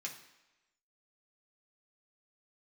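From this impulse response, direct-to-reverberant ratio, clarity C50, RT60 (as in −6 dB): −2.0 dB, 9.0 dB, 1.0 s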